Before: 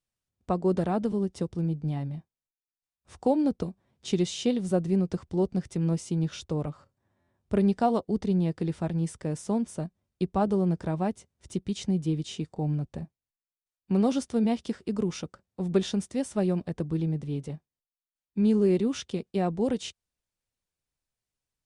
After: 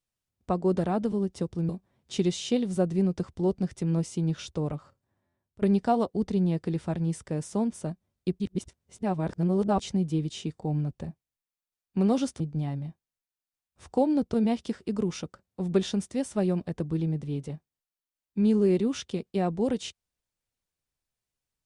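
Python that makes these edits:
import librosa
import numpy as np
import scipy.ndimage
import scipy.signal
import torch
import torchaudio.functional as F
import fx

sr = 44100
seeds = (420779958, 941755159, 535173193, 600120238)

y = fx.edit(x, sr, fx.move(start_s=1.69, length_s=1.94, to_s=14.34),
    fx.fade_out_to(start_s=6.59, length_s=0.97, curve='qsin', floor_db=-23.0),
    fx.reverse_span(start_s=10.34, length_s=1.4), tone=tone)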